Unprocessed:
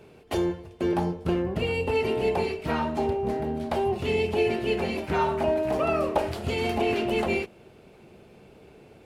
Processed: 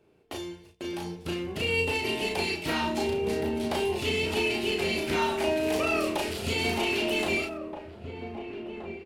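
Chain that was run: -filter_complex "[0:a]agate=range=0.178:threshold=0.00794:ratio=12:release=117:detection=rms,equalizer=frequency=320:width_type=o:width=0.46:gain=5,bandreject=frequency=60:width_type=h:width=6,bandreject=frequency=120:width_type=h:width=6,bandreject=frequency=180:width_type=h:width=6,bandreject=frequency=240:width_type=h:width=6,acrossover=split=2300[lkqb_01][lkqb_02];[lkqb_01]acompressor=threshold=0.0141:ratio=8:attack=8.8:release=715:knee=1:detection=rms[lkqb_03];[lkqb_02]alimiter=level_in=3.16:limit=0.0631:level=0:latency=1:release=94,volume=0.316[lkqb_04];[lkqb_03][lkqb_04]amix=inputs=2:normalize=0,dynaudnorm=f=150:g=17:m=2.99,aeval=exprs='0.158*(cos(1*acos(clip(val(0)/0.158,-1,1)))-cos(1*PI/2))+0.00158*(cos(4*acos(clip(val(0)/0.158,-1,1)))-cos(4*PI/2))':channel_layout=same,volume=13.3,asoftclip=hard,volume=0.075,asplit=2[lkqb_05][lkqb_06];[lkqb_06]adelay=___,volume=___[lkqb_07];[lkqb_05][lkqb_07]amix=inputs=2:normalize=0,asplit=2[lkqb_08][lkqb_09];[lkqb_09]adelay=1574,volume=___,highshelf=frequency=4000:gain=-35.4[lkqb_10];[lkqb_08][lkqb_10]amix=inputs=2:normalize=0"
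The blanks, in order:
35, 0.708, 0.447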